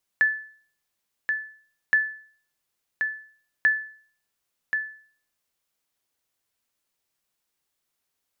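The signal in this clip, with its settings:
ping with an echo 1,740 Hz, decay 0.49 s, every 1.72 s, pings 3, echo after 1.08 s, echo −6 dB −12.5 dBFS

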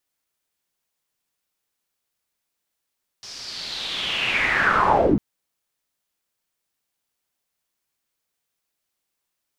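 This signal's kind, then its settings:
filter sweep on noise white, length 1.95 s lowpass, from 5,400 Hz, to 160 Hz, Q 5.3, linear, gain ramp +33.5 dB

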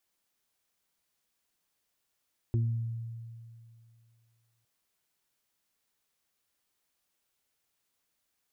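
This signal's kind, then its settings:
harmonic partials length 2.11 s, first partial 115 Hz, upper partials −12.5/−10.5 dB, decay 2.41 s, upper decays 0.87/0.25 s, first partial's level −23.5 dB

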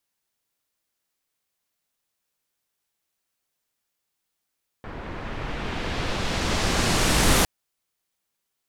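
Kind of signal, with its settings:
filter sweep on noise pink, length 2.61 s lowpass, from 1,500 Hz, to 12,000 Hz, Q 0.88, exponential, gain ramp +16.5 dB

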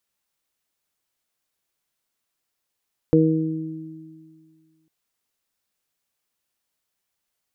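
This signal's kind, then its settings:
harmonic partials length 1.75 s, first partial 159 Hz, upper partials 3/2 dB, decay 1.99 s, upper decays 2.05/0.85 s, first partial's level −17 dB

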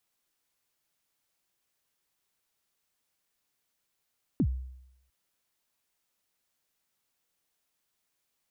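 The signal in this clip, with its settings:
synth kick length 0.70 s, from 330 Hz, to 64 Hz, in 68 ms, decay 0.81 s, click off, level −20 dB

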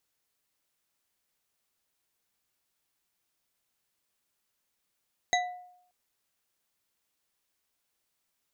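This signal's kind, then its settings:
struck glass bar, length 0.58 s, lowest mode 721 Hz, modes 4, decay 0.73 s, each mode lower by 1.5 dB, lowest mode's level −23 dB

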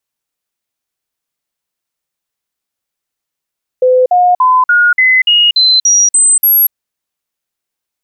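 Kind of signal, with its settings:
stepped sweep 508 Hz up, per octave 2, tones 10, 0.24 s, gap 0.05 s −5 dBFS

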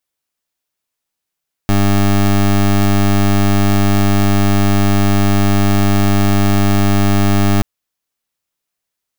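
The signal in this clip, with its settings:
pulse wave 100 Hz, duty 20% −11 dBFS 5.93 s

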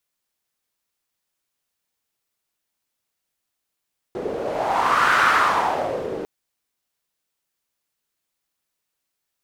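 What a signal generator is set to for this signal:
wind from filtered noise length 2.10 s, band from 420 Hz, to 1,400 Hz, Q 3.8, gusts 1, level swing 11.5 dB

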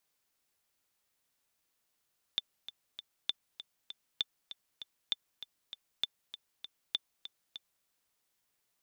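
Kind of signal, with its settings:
click track 197 BPM, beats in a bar 3, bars 6, 3,540 Hz, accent 13 dB −17 dBFS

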